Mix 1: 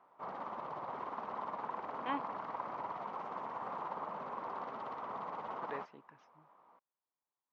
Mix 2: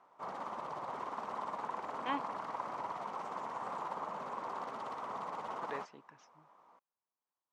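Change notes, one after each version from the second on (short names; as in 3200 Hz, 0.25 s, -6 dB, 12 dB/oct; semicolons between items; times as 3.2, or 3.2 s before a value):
master: remove air absorption 210 m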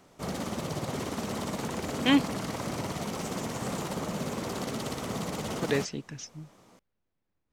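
background -3.5 dB; master: remove band-pass 1000 Hz, Q 3.4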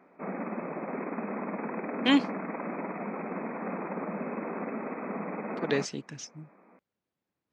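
speech: add HPF 140 Hz; background: add brick-wall FIR band-pass 170–2600 Hz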